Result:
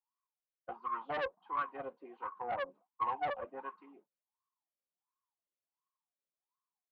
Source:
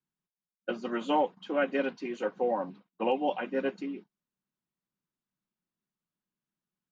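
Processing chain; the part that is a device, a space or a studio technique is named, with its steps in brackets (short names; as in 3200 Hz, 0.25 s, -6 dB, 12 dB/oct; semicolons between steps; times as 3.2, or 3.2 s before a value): wah-wah guitar rig (wah 1.4 Hz 540–1100 Hz, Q 18; tube stage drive 40 dB, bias 0.35; speaker cabinet 75–4400 Hz, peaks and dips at 190 Hz -4 dB, 600 Hz -10 dB, 1100 Hz +6 dB); gain +13 dB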